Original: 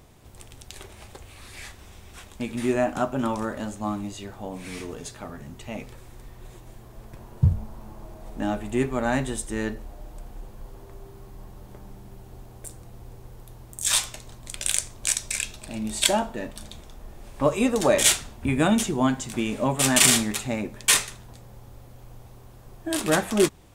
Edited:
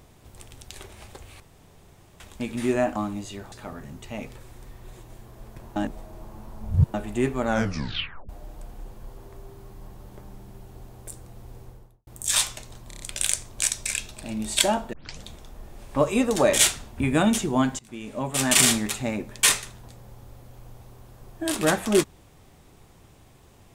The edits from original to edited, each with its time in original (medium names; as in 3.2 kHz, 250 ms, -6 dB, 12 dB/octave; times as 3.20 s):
1.40–2.20 s: room tone
2.96–3.84 s: delete
4.40–5.09 s: delete
7.33–8.51 s: reverse
9.04 s: tape stop 0.82 s
13.19–13.64 s: studio fade out
14.45 s: stutter 0.03 s, 5 plays
16.38 s: tape start 0.31 s
19.24–20.14 s: fade in, from -20.5 dB